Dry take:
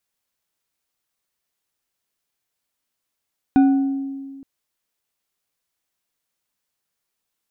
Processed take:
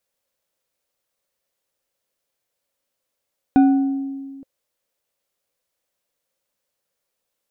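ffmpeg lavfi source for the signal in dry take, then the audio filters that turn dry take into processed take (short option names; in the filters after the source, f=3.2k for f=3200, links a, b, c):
-f lavfi -i "aevalsrc='0.355*pow(10,-3*t/1.84)*sin(2*PI*273*t)+0.1*pow(10,-3*t/0.905)*sin(2*PI*752.7*t)+0.0282*pow(10,-3*t/0.565)*sin(2*PI*1475.3*t)+0.00794*pow(10,-3*t/0.397)*sin(2*PI*2438.7*t)+0.00224*pow(10,-3*t/0.3)*sin(2*PI*3641.8*t)':d=0.87:s=44100"
-af "equalizer=f=540:t=o:w=0.44:g=13"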